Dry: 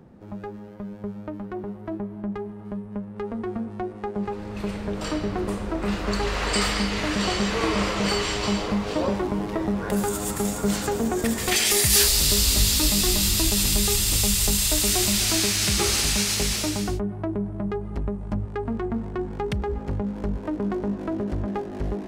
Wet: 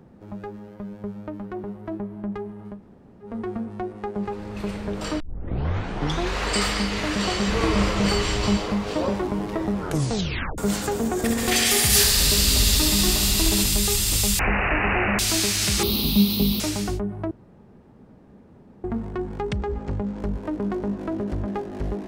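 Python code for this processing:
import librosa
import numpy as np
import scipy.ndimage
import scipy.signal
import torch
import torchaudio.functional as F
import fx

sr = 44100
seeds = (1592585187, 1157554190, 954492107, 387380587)

y = fx.low_shelf(x, sr, hz=170.0, db=9.0, at=(7.47, 8.57))
y = fx.echo_bbd(y, sr, ms=65, stages=2048, feedback_pct=79, wet_db=-6, at=(11.13, 13.64))
y = fx.resample_bad(y, sr, factor=8, down='none', up='filtered', at=(14.39, 15.19))
y = fx.curve_eq(y, sr, hz=(130.0, 200.0, 370.0, 630.0, 1100.0, 1700.0, 2600.0, 3900.0, 7500.0, 15000.0), db=(0, 13, 3, -5, -4, -22, -6, 4, -26, 14), at=(15.83, 16.6))
y = fx.steep_lowpass(y, sr, hz=8800.0, slope=48, at=(19.5, 20.2))
y = fx.edit(y, sr, fx.room_tone_fill(start_s=2.74, length_s=0.54, crossfade_s=0.16),
    fx.tape_start(start_s=5.2, length_s=1.19),
    fx.tape_stop(start_s=9.77, length_s=0.81),
    fx.room_tone_fill(start_s=17.31, length_s=1.53), tone=tone)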